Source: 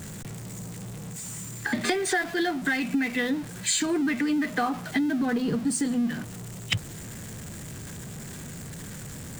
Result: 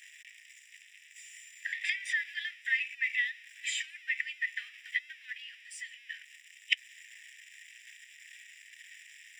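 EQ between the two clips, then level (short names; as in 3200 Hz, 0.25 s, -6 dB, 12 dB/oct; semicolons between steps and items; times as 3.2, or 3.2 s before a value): polynomial smoothing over 25 samples; rippled Chebyshev high-pass 1800 Hz, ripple 3 dB; +3.5 dB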